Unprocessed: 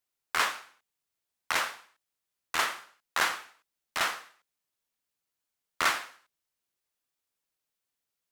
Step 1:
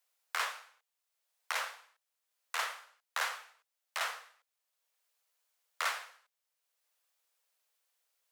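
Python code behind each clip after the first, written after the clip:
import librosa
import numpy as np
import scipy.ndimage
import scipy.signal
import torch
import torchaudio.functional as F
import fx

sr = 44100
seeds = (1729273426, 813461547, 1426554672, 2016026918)

y = scipy.signal.sosfilt(scipy.signal.butter(16, 450.0, 'highpass', fs=sr, output='sos'), x)
y = fx.band_squash(y, sr, depth_pct=40)
y = F.gain(torch.from_numpy(y), -6.0).numpy()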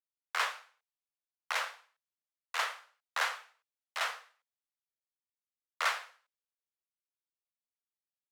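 y = fx.high_shelf(x, sr, hz=6200.0, db=-9.5)
y = fx.band_widen(y, sr, depth_pct=70)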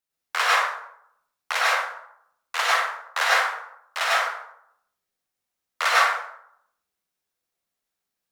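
y = fx.rev_plate(x, sr, seeds[0], rt60_s=0.71, hf_ratio=0.45, predelay_ms=85, drr_db=-6.0)
y = F.gain(torch.from_numpy(y), 7.0).numpy()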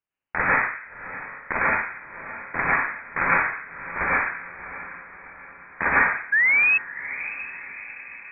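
y = fx.spec_paint(x, sr, seeds[1], shape='fall', start_s=6.32, length_s=0.46, low_hz=390.0, high_hz=1400.0, level_db=-18.0)
y = fx.echo_diffused(y, sr, ms=656, feedback_pct=52, wet_db=-13.5)
y = fx.freq_invert(y, sr, carrier_hz=3000)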